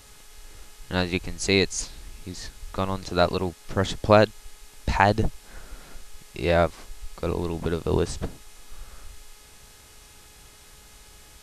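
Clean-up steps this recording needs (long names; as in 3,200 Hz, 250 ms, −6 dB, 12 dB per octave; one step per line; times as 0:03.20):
hum removal 421 Hz, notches 33
broadband denoise 20 dB, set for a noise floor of −50 dBFS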